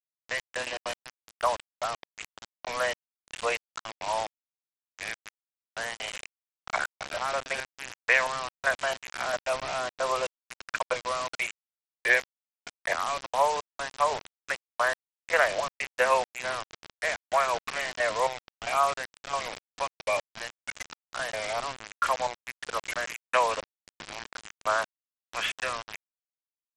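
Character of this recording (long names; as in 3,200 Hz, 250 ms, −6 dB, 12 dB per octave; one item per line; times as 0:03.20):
chopped level 1.5 Hz, depth 65%, duty 40%
a quantiser's noise floor 6 bits, dither none
SBC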